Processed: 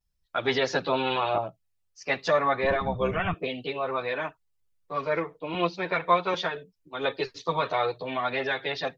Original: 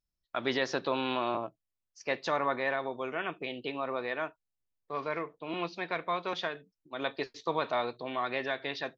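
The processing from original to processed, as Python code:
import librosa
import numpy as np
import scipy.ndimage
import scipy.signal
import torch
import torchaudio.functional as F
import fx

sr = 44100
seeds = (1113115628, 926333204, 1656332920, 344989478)

y = fx.octave_divider(x, sr, octaves=1, level_db=2.0, at=(2.62, 3.33))
y = fx.chorus_voices(y, sr, voices=6, hz=0.68, base_ms=11, depth_ms=1.3, mix_pct=65)
y = F.gain(torch.from_numpy(y), 8.0).numpy()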